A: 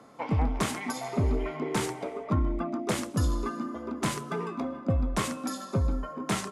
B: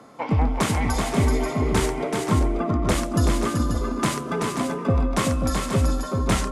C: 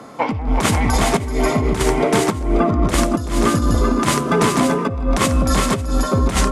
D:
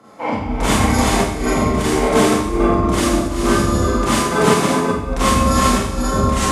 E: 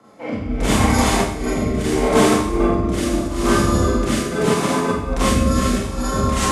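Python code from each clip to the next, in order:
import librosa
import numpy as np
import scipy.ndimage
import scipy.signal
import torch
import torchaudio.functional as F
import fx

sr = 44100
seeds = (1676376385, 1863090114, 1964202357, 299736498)

y1 = fx.echo_multitap(x, sr, ms=(381, 535), db=(-4.5, -7.0))
y1 = y1 * librosa.db_to_amplitude(5.5)
y2 = fx.over_compress(y1, sr, threshold_db=-23.0, ratio=-0.5)
y2 = y2 * librosa.db_to_amplitude(7.5)
y3 = fx.rev_schroeder(y2, sr, rt60_s=0.9, comb_ms=29, drr_db=-8.0)
y3 = fx.upward_expand(y3, sr, threshold_db=-20.0, expansion=1.5)
y3 = y3 * librosa.db_to_amplitude(-5.0)
y4 = fx.rotary(y3, sr, hz=0.75)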